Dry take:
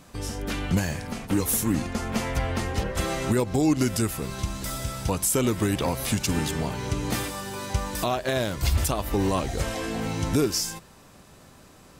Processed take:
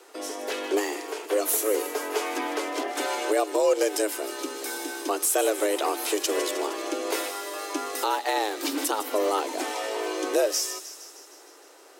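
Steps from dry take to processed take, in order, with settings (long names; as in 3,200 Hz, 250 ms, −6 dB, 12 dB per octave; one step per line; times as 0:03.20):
high-pass filter 120 Hz 12 dB per octave
frequency shifter +210 Hz
delay with a high-pass on its return 155 ms, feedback 64%, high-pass 2,700 Hz, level −11 dB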